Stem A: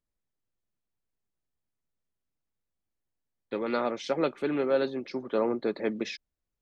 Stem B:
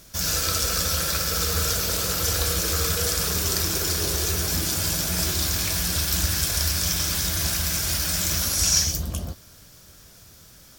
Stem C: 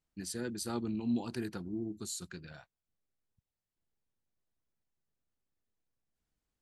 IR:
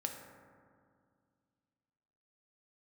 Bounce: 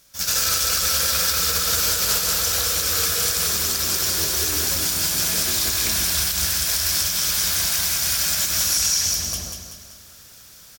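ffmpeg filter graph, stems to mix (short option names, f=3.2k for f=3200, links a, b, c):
-filter_complex "[0:a]asubboost=boost=6.5:cutoff=240,volume=-16dB[a];[1:a]tiltshelf=f=660:g=-5.5,volume=1dB,asplit=3[b][c][d];[c]volume=-10.5dB[e];[d]volume=-3dB[f];[2:a]highpass=f=250:p=1,equalizer=f=3.7k:t=o:w=0.74:g=-15,volume=-10.5dB,asplit=2[g][h];[h]apad=whole_len=475398[i];[b][i]sidechaingate=range=-33dB:threshold=-53dB:ratio=16:detection=peak[j];[3:a]atrim=start_sample=2205[k];[e][k]afir=irnorm=-1:irlink=0[l];[f]aecho=0:1:191|382|573|764|955|1146:1|0.46|0.212|0.0973|0.0448|0.0206[m];[a][j][g][l][m]amix=inputs=5:normalize=0,alimiter=limit=-10dB:level=0:latency=1:release=89"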